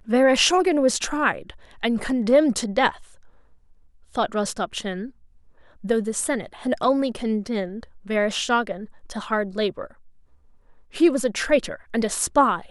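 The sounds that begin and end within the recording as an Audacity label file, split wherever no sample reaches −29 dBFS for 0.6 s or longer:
4.150000	5.060000	sound
5.840000	9.850000	sound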